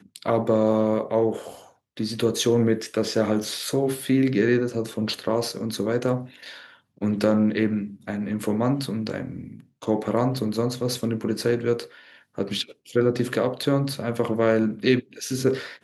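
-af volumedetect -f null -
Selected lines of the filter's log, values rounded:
mean_volume: -24.3 dB
max_volume: -7.2 dB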